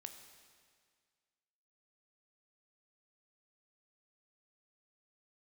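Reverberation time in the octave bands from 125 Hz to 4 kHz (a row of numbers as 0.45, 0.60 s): 1.9, 1.9, 1.9, 1.9, 1.9, 1.8 s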